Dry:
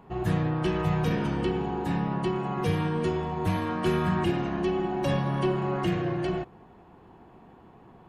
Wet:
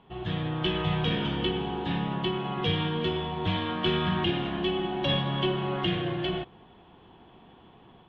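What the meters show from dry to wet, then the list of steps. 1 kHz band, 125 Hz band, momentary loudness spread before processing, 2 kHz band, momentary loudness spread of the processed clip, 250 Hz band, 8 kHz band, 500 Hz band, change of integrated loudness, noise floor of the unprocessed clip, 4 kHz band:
-1.5 dB, -2.5 dB, 3 LU, +1.5 dB, 4 LU, -2.0 dB, under -15 dB, -2.0 dB, -1.0 dB, -53 dBFS, +11.5 dB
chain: level rider gain up to 4.5 dB; four-pole ladder low-pass 3.5 kHz, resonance 80%; trim +6 dB

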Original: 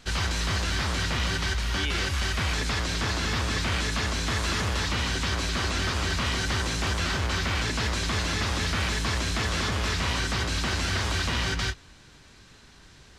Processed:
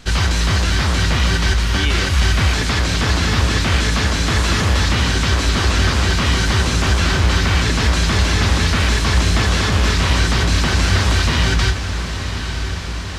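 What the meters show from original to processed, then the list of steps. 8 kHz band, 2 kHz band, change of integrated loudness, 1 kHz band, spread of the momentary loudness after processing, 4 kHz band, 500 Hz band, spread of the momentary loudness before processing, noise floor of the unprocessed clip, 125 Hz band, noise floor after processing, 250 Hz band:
+8.5 dB, +9.0 dB, +10.0 dB, +9.0 dB, 2 LU, +9.0 dB, +10.0 dB, 1 LU, -52 dBFS, +13.0 dB, -23 dBFS, +11.5 dB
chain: bass shelf 260 Hz +4.5 dB; on a send: echo that smears into a reverb 1010 ms, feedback 70%, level -10 dB; on the sum: trim +8 dB

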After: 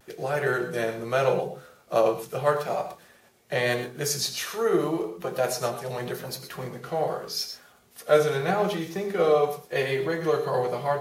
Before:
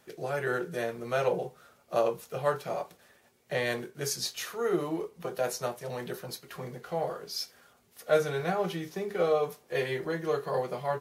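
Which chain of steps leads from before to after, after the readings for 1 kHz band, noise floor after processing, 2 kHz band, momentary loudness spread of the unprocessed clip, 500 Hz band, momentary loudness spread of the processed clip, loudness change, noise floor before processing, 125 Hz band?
+5.5 dB, -57 dBFS, +5.0 dB, 11 LU, +5.5 dB, 12 LU, +5.5 dB, -64 dBFS, +5.5 dB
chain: de-hum 83.11 Hz, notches 6; vibrato 0.83 Hz 44 cents; gated-style reverb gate 140 ms rising, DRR 9.5 dB; trim +5 dB

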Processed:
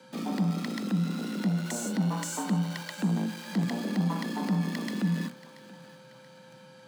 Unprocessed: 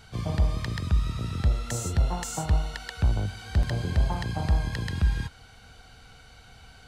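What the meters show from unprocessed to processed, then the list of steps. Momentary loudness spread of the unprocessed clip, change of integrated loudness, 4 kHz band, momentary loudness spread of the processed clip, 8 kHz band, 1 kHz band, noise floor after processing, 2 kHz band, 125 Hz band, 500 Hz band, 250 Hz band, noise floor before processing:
4 LU, -2.0 dB, -1.5 dB, 6 LU, -1.0 dB, -1.0 dB, -52 dBFS, -1.5 dB, -5.0 dB, -1.0 dB, +8.5 dB, -52 dBFS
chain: hum notches 60/120/180/240 Hz; in parallel at -11 dB: companded quantiser 2-bit; on the sum: mains buzz 400 Hz, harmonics 3, -51 dBFS -8 dB/octave; frequency shift +120 Hz; thinning echo 681 ms, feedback 45%, high-pass 450 Hz, level -16.5 dB; trim -5 dB

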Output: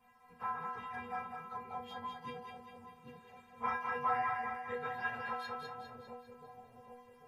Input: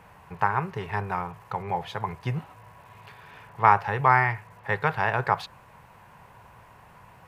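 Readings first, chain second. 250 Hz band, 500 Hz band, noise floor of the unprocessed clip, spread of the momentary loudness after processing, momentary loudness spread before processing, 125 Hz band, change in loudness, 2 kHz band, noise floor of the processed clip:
-13.5 dB, -13.0 dB, -53 dBFS, 21 LU, 14 LU, -26.0 dB, -14.0 dB, -13.5 dB, -62 dBFS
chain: phase randomisation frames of 50 ms; inharmonic resonator 240 Hz, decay 0.47 s, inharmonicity 0.008; two-band feedback delay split 640 Hz, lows 795 ms, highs 201 ms, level -3.5 dB; trim +2 dB

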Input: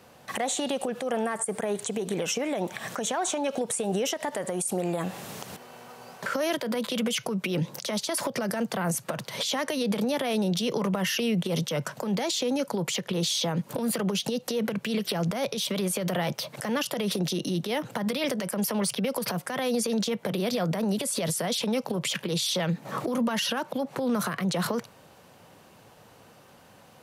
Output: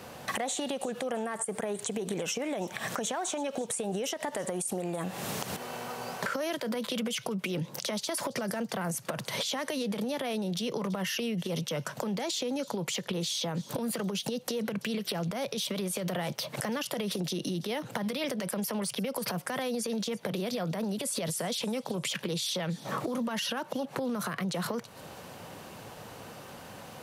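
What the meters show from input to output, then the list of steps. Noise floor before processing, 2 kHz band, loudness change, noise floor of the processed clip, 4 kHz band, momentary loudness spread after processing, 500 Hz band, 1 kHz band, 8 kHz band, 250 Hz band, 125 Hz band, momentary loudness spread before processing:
-54 dBFS, -3.5 dB, -4.5 dB, -49 dBFS, -4.0 dB, 4 LU, -4.5 dB, -3.5 dB, -4.0 dB, -5.0 dB, -5.0 dB, 5 LU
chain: compression 6:1, threshold -39 dBFS, peak gain reduction 15 dB; feedback echo behind a high-pass 333 ms, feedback 33%, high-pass 3.2 kHz, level -17.5 dB; trim +8 dB

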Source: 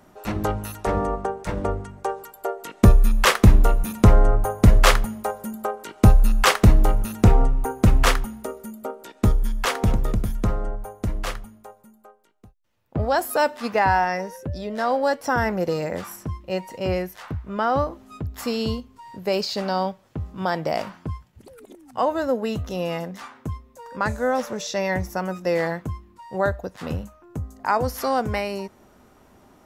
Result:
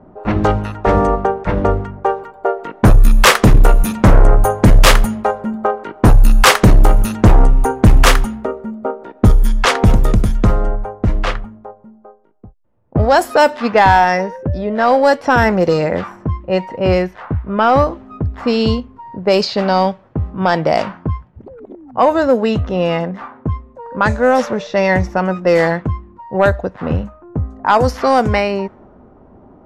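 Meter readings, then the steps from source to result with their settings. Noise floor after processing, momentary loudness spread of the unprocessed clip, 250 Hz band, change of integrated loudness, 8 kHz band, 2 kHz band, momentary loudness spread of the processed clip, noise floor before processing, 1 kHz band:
-45 dBFS, 17 LU, +8.0 dB, +8.0 dB, +7.5 dB, +9.0 dB, 13 LU, -55 dBFS, +9.5 dB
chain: sine folder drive 7 dB, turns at -2.5 dBFS; level-controlled noise filter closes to 730 Hz, open at -6 dBFS

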